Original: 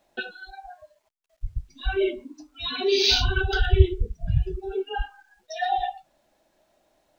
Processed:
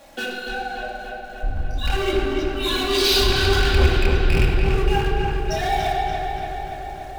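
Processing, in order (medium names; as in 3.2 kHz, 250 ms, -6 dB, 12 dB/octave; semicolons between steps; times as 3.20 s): rattle on loud lows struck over -18 dBFS, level -10 dBFS; chorus voices 2, 0.86 Hz, delay 25 ms, depth 4.8 ms; waveshaping leveller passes 2; hum notches 50/100/150/200/250/300/350/400 Hz; power-law waveshaper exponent 0.5; filtered feedback delay 288 ms, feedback 73%, low-pass 4.2 kHz, level -4.5 dB; simulated room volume 3400 m³, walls mixed, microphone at 2.3 m; trim -8.5 dB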